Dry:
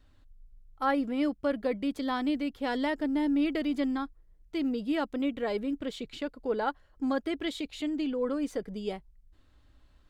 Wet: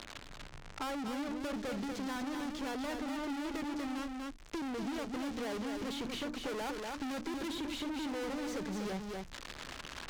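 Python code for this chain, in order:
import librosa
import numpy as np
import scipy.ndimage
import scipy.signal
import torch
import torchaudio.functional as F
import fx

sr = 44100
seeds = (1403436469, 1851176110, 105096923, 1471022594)

y = x + 0.5 * 10.0 ** (-31.5 / 20.0) * np.diff(np.sign(x), prepend=np.sign(x[:1]))
y = scipy.signal.sosfilt(scipy.signal.butter(4, 6700.0, 'lowpass', fs=sr, output='sos'), y)
y = fx.high_shelf(y, sr, hz=4000.0, db=-10.5)
y = fx.hum_notches(y, sr, base_hz=60, count=5)
y = fx.leveller(y, sr, passes=2)
y = fx.rider(y, sr, range_db=10, speed_s=2.0)
y = fx.tube_stage(y, sr, drive_db=38.0, bias=0.55)
y = y + 10.0 ** (-5.5 / 20.0) * np.pad(y, (int(241 * sr / 1000.0), 0))[:len(y)]
y = fx.band_squash(y, sr, depth_pct=70)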